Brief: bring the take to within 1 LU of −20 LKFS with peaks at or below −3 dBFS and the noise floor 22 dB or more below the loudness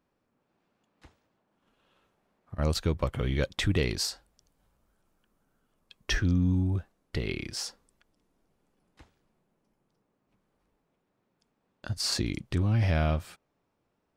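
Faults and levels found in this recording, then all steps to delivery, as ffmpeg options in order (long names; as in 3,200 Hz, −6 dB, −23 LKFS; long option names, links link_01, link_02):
integrated loudness −29.5 LKFS; sample peak −15.5 dBFS; target loudness −20.0 LKFS
→ -af "volume=9.5dB"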